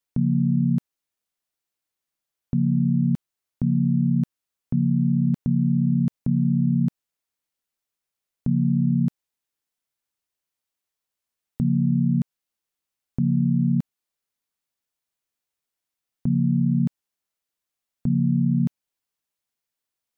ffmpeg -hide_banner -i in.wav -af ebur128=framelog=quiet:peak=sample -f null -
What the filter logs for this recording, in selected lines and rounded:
Integrated loudness:
  I:         -22.9 LUFS
  Threshold: -33.0 LUFS
Loudness range:
  LRA:         4.9 LU
  Threshold: -45.7 LUFS
  LRA low:   -28.0 LUFS
  LRA high:  -23.0 LUFS
Sample peak:
  Peak:      -12.3 dBFS